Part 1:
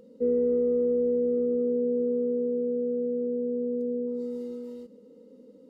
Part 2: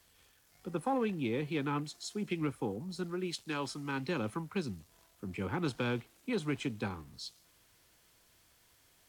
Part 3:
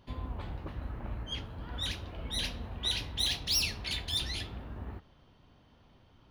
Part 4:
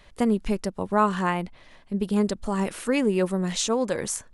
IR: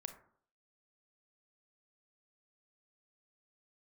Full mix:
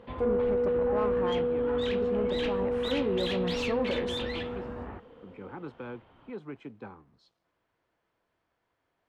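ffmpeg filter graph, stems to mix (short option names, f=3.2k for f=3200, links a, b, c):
-filter_complex "[0:a]volume=-6dB[a];[1:a]volume=-9dB[b];[2:a]lowpass=f=3.5k:w=0.5412,lowpass=f=3.5k:w=1.3066,volume=1dB[c];[3:a]volume=-0.5dB,afade=t=in:st=2.65:d=0.24:silence=0.316228[d];[b][d]amix=inputs=2:normalize=0,lowpass=f=1.1k:p=1,alimiter=level_in=0.5dB:limit=-24dB:level=0:latency=1,volume=-0.5dB,volume=0dB[e];[a][c][e]amix=inputs=3:normalize=0,asplit=2[f][g];[g]highpass=f=720:p=1,volume=16dB,asoftclip=type=tanh:threshold=-17dB[h];[f][h]amix=inputs=2:normalize=0,lowpass=f=1.1k:p=1,volume=-6dB"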